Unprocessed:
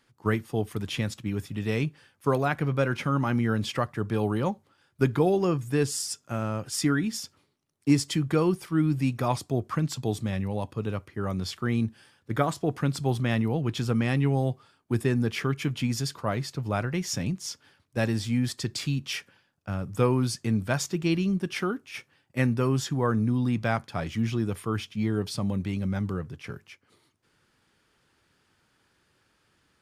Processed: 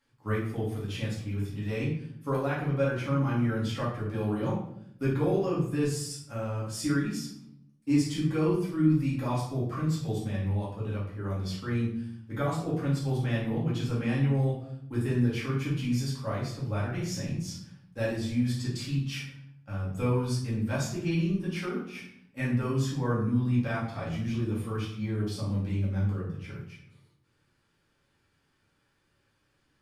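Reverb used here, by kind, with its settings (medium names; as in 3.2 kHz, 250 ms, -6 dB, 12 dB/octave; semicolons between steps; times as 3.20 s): simulated room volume 130 m³, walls mixed, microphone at 2.2 m; trim -13 dB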